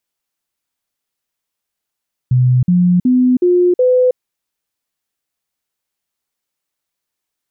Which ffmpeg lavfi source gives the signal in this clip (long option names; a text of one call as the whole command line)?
ffmpeg -f lavfi -i "aevalsrc='0.398*clip(min(mod(t,0.37),0.32-mod(t,0.37))/0.005,0,1)*sin(2*PI*126*pow(2,floor(t/0.37)/2)*mod(t,0.37))':duration=1.85:sample_rate=44100" out.wav